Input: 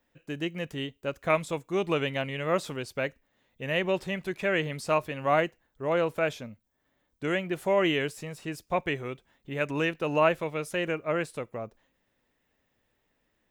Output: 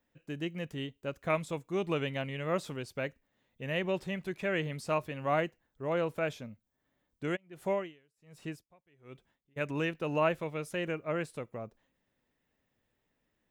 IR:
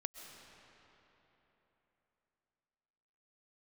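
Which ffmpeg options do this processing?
-filter_complex "[0:a]equalizer=f=150:t=o:w=2.1:g=4,asplit=3[a][b][c];[a]afade=t=out:st=7.35:d=0.02[d];[b]aeval=exprs='val(0)*pow(10,-36*(0.5-0.5*cos(2*PI*1.3*n/s))/20)':c=same,afade=t=in:st=7.35:d=0.02,afade=t=out:st=9.56:d=0.02[e];[c]afade=t=in:st=9.56:d=0.02[f];[d][e][f]amix=inputs=3:normalize=0,volume=-6dB"

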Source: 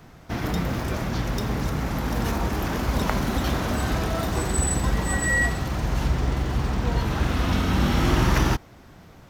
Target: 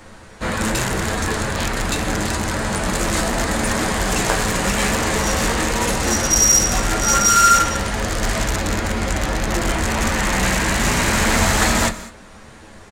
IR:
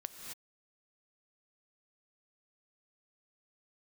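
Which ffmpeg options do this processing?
-filter_complex "[0:a]aecho=1:1:6.7:0.5,flanger=delay=9:depth=4.6:regen=-35:speed=1.1:shape=triangular,asplit=2[a][b];[b]aeval=exprs='(mod(13.3*val(0)+1,2)-1)/13.3':c=same,volume=-6dB[c];[a][c]amix=inputs=2:normalize=0,equalizer=f=160:t=o:w=0.67:g=-10,equalizer=f=2.5k:t=o:w=0.67:g=7,equalizer=f=10k:t=o:w=0.67:g=12,asetrate=31752,aresample=44100,asplit=2[d][e];[1:a]atrim=start_sample=2205,afade=t=out:st=0.26:d=0.01,atrim=end_sample=11907[f];[e][f]afir=irnorm=-1:irlink=0,volume=0dB[g];[d][g]amix=inputs=2:normalize=0,volume=2.5dB"

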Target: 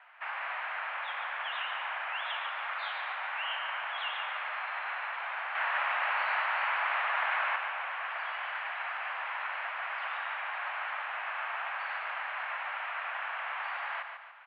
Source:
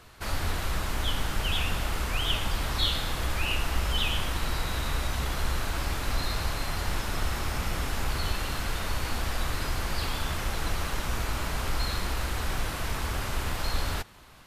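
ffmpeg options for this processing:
-filter_complex "[0:a]asettb=1/sr,asplit=3[a][b][c];[a]atrim=end=5.554[d];[b]atrim=start=5.55:end=7.56,asetpts=PTS-STARTPTS,afade=t=in:d=0.004:c=qsin,afade=t=out:st=2.006:d=0.004:c=qsin,acontrast=53[e];[c]atrim=start=7.556[f];[d][e]acrossfade=d=0.004:c1=hsin:c2=qsin[g];[g][f]acrossfade=d=0.004:c1=qsin:c2=hsin,aecho=1:1:144|288|432|576|720:0.447|0.192|0.0826|0.0355|0.0153,highpass=f=440:t=q:w=0.5412,highpass=f=440:t=q:w=1.307,lowpass=f=2.4k:t=q:w=0.5176,lowpass=f=2.4k:t=q:w=0.7071,lowpass=f=2.4k:t=q:w=1.932,afreqshift=270"

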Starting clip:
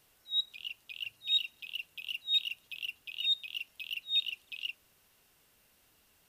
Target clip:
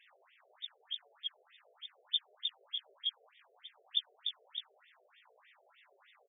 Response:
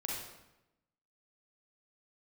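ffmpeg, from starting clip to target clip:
-filter_complex "[0:a]afftfilt=real='re':imag='-im':win_size=2048:overlap=0.75,lowpass=5k,asplit=2[a][b];[b]adelay=32,volume=-13dB[c];[a][c]amix=inputs=2:normalize=0,asplit=2[d][e];[e]adelay=423,lowpass=f=1k:p=1,volume=-15dB,asplit=2[f][g];[g]adelay=423,lowpass=f=1k:p=1,volume=0.15[h];[f][h]amix=inputs=2:normalize=0[i];[d][i]amix=inputs=2:normalize=0,asetrate=57191,aresample=44100,atempo=0.771105,acrossover=split=3500[j][k];[k]acompressor=threshold=-39dB:ratio=4:attack=1:release=60[l];[j][l]amix=inputs=2:normalize=0,afftfilt=real='re*between(b*sr/1024,500*pow(2600/500,0.5+0.5*sin(2*PI*3.3*pts/sr))/1.41,500*pow(2600/500,0.5+0.5*sin(2*PI*3.3*pts/sr))*1.41)':imag='im*between(b*sr/1024,500*pow(2600/500,0.5+0.5*sin(2*PI*3.3*pts/sr))/1.41,500*pow(2600/500,0.5+0.5*sin(2*PI*3.3*pts/sr))*1.41)':win_size=1024:overlap=0.75,volume=17.5dB"

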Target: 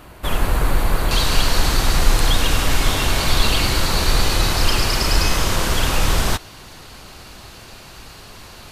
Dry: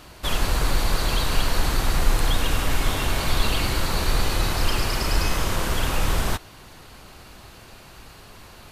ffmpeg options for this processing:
-af "asetnsamples=n=441:p=0,asendcmd='1.11 equalizer g 4',equalizer=f=5.2k:w=0.79:g=-10,volume=4.5dB"

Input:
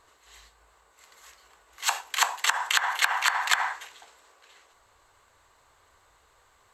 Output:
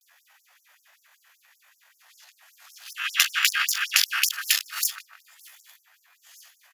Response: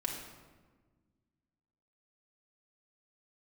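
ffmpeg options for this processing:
-filter_complex "[0:a]areverse,asubboost=boost=6:cutoff=110,asetrate=72056,aresample=44100,atempo=0.612027,asplit=2[a][b];[b]adelay=152,lowpass=f=1.2k:p=1,volume=-12dB,asplit=2[c][d];[d]adelay=152,lowpass=f=1.2k:p=1,volume=0.54,asplit=2[e][f];[f]adelay=152,lowpass=f=1.2k:p=1,volume=0.54,asplit=2[g][h];[h]adelay=152,lowpass=f=1.2k:p=1,volume=0.54,asplit=2[i][j];[j]adelay=152,lowpass=f=1.2k:p=1,volume=0.54,asplit=2[k][l];[l]adelay=152,lowpass=f=1.2k:p=1,volume=0.54[m];[a][c][e][g][i][k][m]amix=inputs=7:normalize=0,afftfilt=real='re*gte(b*sr/1024,450*pow(5300/450,0.5+0.5*sin(2*PI*5.2*pts/sr)))':imag='im*gte(b*sr/1024,450*pow(5300/450,0.5+0.5*sin(2*PI*5.2*pts/sr)))':win_size=1024:overlap=0.75,volume=4.5dB"

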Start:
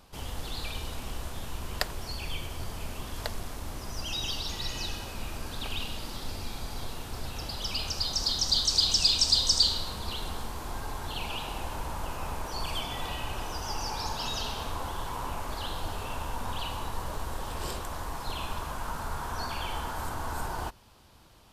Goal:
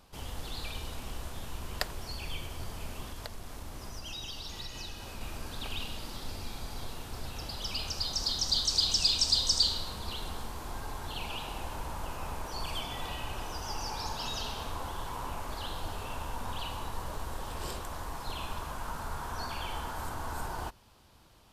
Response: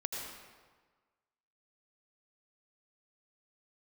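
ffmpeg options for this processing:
-filter_complex "[0:a]asettb=1/sr,asplit=3[a][b][c];[a]atrim=end=3.054[d];[b]atrim=start=3.05:end=5.21,asetpts=PTS-STARTPTS,afade=t=in:d=0.004:c=qsin,afade=t=out:st=2.156:d=0.004:c=qsin,acompressor=threshold=-34dB:ratio=6[e];[c]atrim=start=5.206[f];[d][e]acrossfade=d=0.004:c1=hsin:c2=qsin[g];[g][f]acrossfade=d=0.004:c1=qsin:c2=hsin,volume=-3dB"

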